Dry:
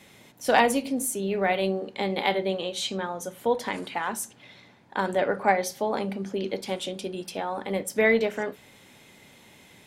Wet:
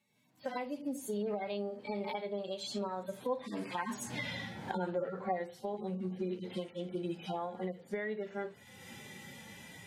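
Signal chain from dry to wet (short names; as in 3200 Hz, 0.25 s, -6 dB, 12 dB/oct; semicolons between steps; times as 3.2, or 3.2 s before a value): median-filter separation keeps harmonic; Doppler pass-by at 4.18, 19 m/s, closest 2.3 m; recorder AGC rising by 33 dB/s; gain +7 dB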